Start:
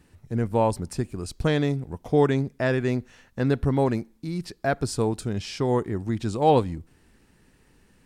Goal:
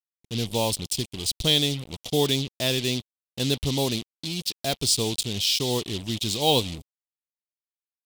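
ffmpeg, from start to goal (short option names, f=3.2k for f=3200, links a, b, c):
-af "acrusher=bits=5:mix=0:aa=0.5,highshelf=f=2.3k:t=q:w=3:g=13.5,volume=-3.5dB"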